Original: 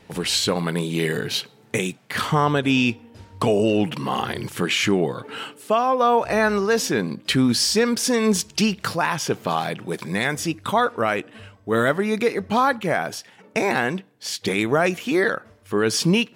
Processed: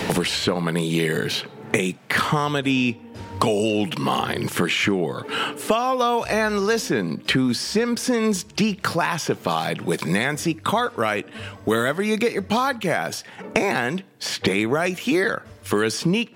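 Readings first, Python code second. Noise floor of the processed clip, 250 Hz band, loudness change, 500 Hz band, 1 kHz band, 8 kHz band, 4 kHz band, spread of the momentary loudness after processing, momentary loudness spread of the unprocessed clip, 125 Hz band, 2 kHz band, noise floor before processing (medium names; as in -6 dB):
-45 dBFS, 0.0 dB, -0.5 dB, -1.0 dB, -1.0 dB, -3.0 dB, -1.0 dB, 5 LU, 9 LU, 0.0 dB, +0.5 dB, -53 dBFS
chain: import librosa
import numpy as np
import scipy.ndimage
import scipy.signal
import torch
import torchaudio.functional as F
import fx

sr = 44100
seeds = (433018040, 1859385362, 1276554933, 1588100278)

y = fx.band_squash(x, sr, depth_pct=100)
y = F.gain(torch.from_numpy(y), -1.5).numpy()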